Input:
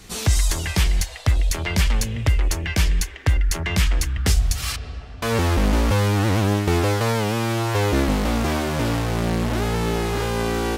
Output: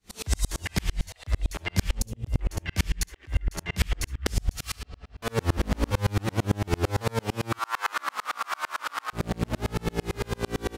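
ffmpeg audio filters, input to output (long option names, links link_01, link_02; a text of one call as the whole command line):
ffmpeg -i in.wav -filter_complex "[0:a]asettb=1/sr,asplit=3[link_01][link_02][link_03];[link_01]atrim=end=1.924[link_04];[link_02]atrim=start=1.92:end=2.41,asetpts=PTS-STARTPTS,afade=type=in:duration=0.004:curve=qsin,afade=type=out:start_time=0.486:duration=0.004:curve=qsin,equalizer=frequency=1900:width_type=o:width=1.8:gain=-13[link_05];[link_03]atrim=start=2.406[link_06];[link_04][link_05]acrossfade=duration=0.004:curve1=hsin:curve2=qsin[link_07];[link_07][link_06]acrossfade=duration=0.004:curve1=qsin:curve2=hsin,asettb=1/sr,asplit=3[link_08][link_09][link_10];[link_08]atrim=end=7.524[link_11];[link_09]atrim=start=7.52:end=9.13,asetpts=PTS-STARTPTS,afade=type=in:duration=0.004:curve=qsin,afade=type=out:start_time=1.606:duration=0.004:curve=qsin,highpass=frequency=1200:width_type=q:width=4.2[link_12];[link_10]atrim=start=9.126[link_13];[link_11][link_12]acrossfade=duration=0.004:curve1=hsin:curve2=qsin[link_14];[link_14][link_13]acrossfade=duration=0.004:curve1=qsin:curve2=hsin,aecho=1:1:59|70:0.251|0.335,aeval=exprs='val(0)*pow(10,-38*if(lt(mod(-8.9*n/s,1),2*abs(-8.9)/1000),1-mod(-8.9*n/s,1)/(2*abs(-8.9)/1000),(mod(-8.9*n/s,1)-2*abs(-8.9)/1000)/(1-2*abs(-8.9)/1000))/20)':channel_layout=same" out.wav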